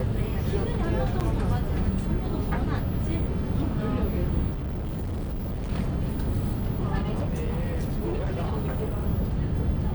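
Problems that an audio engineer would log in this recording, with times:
1.2–1.21 gap 7.7 ms
4.5–5.72 clipped -27.5 dBFS
6.98–9.05 clipped -23.5 dBFS

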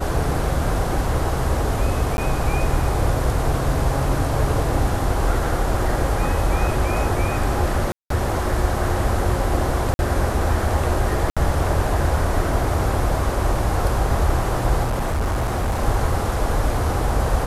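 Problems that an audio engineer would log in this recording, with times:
2.17–2.18 gap
7.92–8.1 gap 0.183 s
9.94–9.99 gap 51 ms
11.3–11.37 gap 66 ms
14.83–15.83 clipped -18 dBFS

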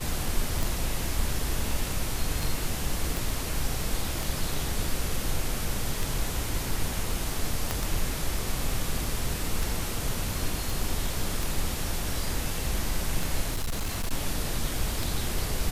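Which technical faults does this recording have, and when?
tick 33 1/3 rpm
3.17 pop
7.71 pop
10.7 pop
13.5–14.13 clipped -25 dBFS

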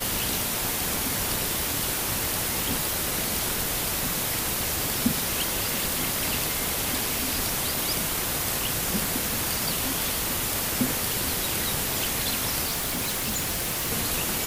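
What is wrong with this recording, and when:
12.65–13.92 clipped -24 dBFS

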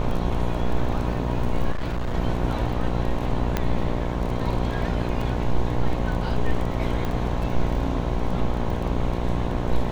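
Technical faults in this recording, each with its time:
buzz 60 Hz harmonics 18 -27 dBFS
crackle 12/s -29 dBFS
1.71–2.15 clipped -22 dBFS
3.57 pop -9 dBFS
5.21 gap 4.2 ms
7.05 pop -16 dBFS

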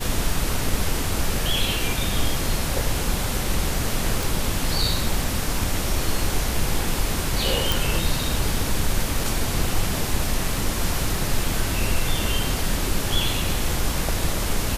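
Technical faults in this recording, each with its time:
4.23 pop
7.72 pop

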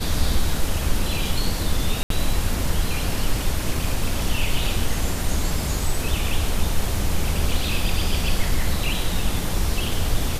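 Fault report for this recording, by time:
2.03–2.1 gap 73 ms

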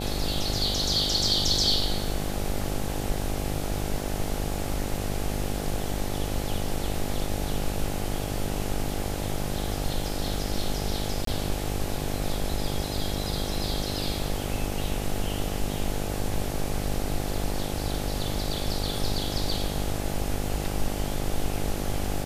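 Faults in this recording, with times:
buzz 50 Hz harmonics 17 -32 dBFS
11.25–11.27 gap 23 ms

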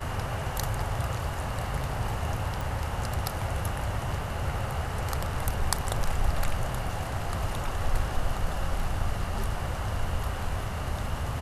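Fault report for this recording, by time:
2.61 pop

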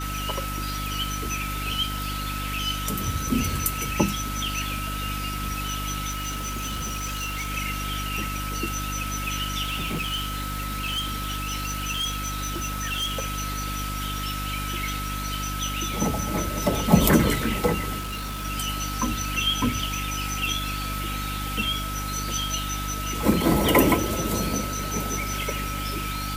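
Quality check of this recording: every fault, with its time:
crackle 160/s -36 dBFS
hum 50 Hz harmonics 6 -32 dBFS
tone 1300 Hz -33 dBFS
6.09–7.51 clipped -26 dBFS
9.63–13.25 clipped -23.5 dBFS
17.99–18.46 clipped -28.5 dBFS

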